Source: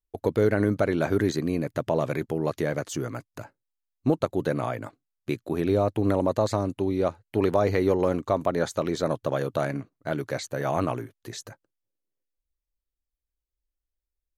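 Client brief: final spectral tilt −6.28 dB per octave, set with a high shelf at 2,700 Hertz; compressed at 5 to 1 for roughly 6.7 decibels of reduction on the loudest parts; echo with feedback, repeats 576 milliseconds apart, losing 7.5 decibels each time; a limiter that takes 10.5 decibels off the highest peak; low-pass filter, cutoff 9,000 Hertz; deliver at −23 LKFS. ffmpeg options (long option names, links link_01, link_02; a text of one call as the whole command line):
ffmpeg -i in.wav -af "lowpass=9000,highshelf=frequency=2700:gain=-3.5,acompressor=threshold=-25dB:ratio=5,alimiter=limit=-23.5dB:level=0:latency=1,aecho=1:1:576|1152|1728|2304|2880:0.422|0.177|0.0744|0.0312|0.0131,volume=12.5dB" out.wav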